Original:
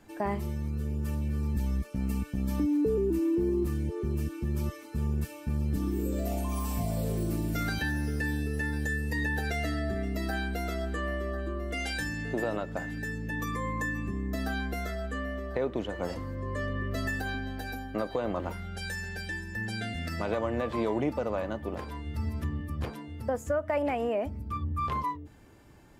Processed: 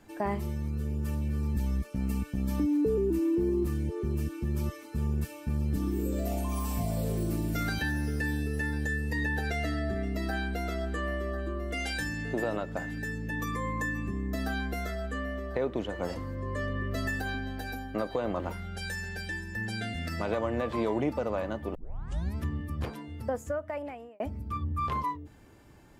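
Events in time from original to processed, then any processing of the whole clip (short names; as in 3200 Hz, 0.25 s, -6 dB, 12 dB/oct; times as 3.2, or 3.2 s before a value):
8.73–10.94 high shelf 7800 Hz -6 dB
21.75 tape start 0.60 s
23.17–24.2 fade out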